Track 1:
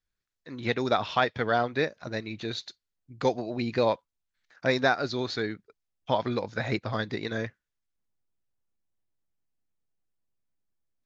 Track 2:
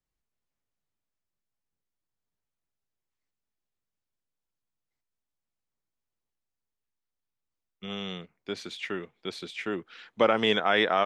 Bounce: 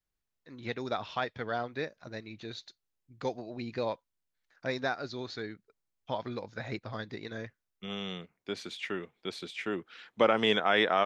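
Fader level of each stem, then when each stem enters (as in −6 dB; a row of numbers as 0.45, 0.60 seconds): −8.5, −2.0 decibels; 0.00, 0.00 seconds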